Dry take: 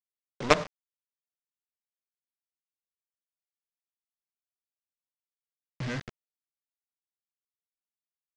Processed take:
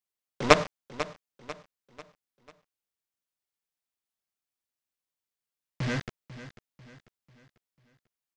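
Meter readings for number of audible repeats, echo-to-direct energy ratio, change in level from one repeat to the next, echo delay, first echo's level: 3, -13.5 dB, -7.5 dB, 0.494 s, -14.5 dB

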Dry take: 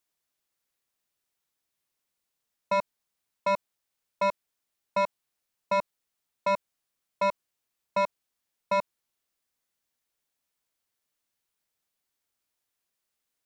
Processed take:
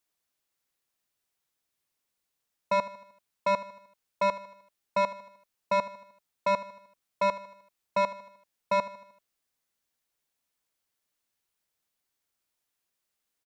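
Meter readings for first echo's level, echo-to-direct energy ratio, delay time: -15.5 dB, -14.0 dB, 77 ms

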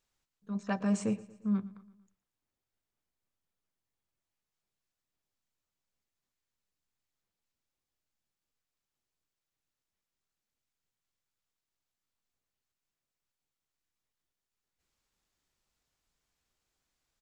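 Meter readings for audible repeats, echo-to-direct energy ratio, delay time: 3, -18.0 dB, 0.116 s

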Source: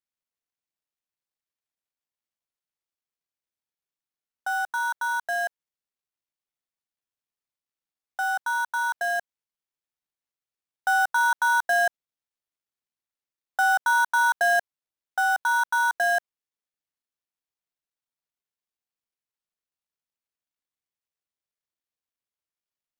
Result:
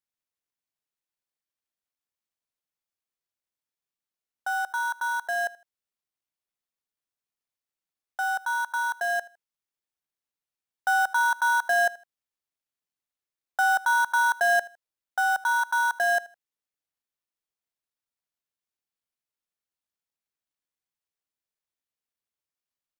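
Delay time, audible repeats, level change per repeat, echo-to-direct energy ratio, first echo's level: 79 ms, 2, -11.0 dB, -20.5 dB, -21.0 dB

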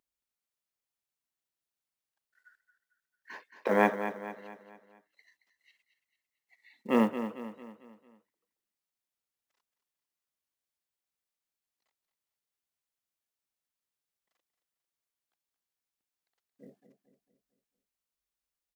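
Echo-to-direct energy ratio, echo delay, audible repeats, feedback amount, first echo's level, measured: -9.5 dB, 0.224 s, 4, 46%, -10.5 dB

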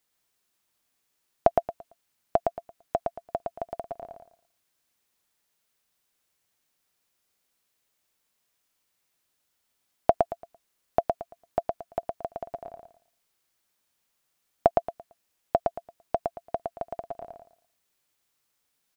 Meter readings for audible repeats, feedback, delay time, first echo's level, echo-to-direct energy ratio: 3, 25%, 0.113 s, -3.5 dB, -3.0 dB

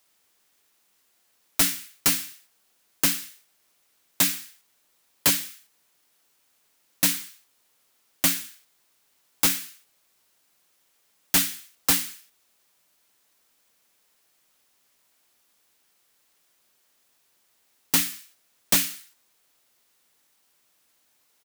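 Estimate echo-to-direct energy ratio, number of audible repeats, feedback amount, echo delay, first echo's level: -20.5 dB, 2, 41%, 61 ms, -21.5 dB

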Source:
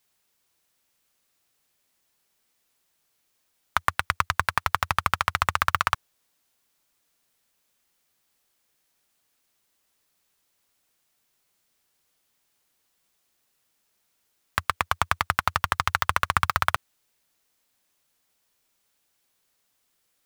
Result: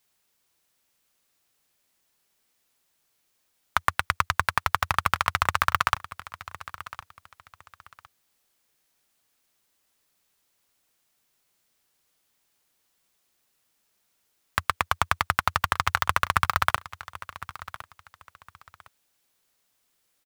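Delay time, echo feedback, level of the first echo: 1.059 s, 25%, -16.5 dB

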